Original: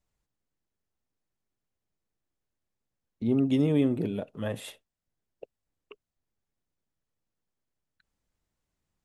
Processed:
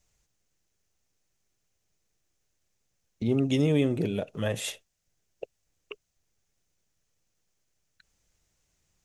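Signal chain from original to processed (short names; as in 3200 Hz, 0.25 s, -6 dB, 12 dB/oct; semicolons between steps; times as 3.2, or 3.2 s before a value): fifteen-band EQ 250 Hz -6 dB, 1000 Hz -4 dB, 2500 Hz +3 dB, 6300 Hz +10 dB; in parallel at +0.5 dB: compressor, threshold -39 dBFS, peak gain reduction 15.5 dB; on the sum: gain +1.5 dB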